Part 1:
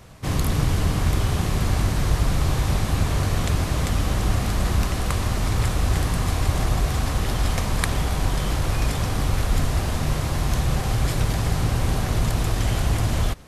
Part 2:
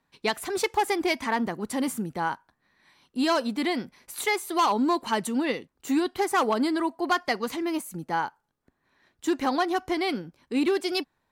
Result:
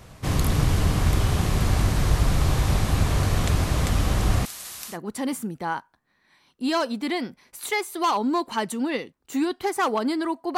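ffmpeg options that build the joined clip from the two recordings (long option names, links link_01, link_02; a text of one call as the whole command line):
ffmpeg -i cue0.wav -i cue1.wav -filter_complex "[0:a]asettb=1/sr,asplit=3[link_01][link_02][link_03];[link_01]atrim=end=4.454[link_04];[link_02]atrim=start=4.45:end=4.98,asetpts=PTS-STARTPTS,afade=type=in:duration=0.004:curve=qsin,afade=type=out:start_time=0.526:duration=0.004:curve=qsin,aderivative[link_05];[link_03]atrim=start=4.976[link_06];[link_04][link_05]acrossfade=duration=0.004:curve1=hsin:curve2=qsin[link_07];[link_07][link_06]acrossfade=duration=0.004:curve1=qsin:curve2=hsin,apad=whole_dur=10.57,atrim=end=10.57,atrim=end=4.98,asetpts=PTS-STARTPTS[link_08];[1:a]atrim=start=1.43:end=7.12,asetpts=PTS-STARTPTS[link_09];[link_08][link_09]acrossfade=duration=0.1:curve1=tri:curve2=tri" out.wav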